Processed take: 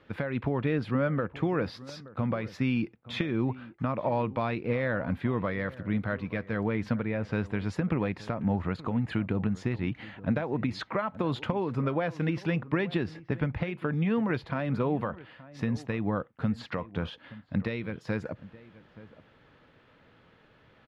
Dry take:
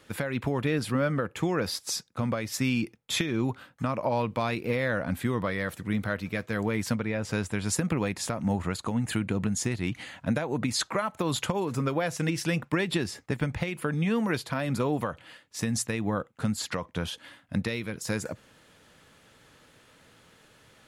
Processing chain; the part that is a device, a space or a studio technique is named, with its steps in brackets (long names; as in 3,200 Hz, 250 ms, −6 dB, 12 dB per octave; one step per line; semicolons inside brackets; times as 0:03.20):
shout across a valley (high-frequency loss of the air 330 metres; slap from a distant wall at 150 metres, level −18 dB)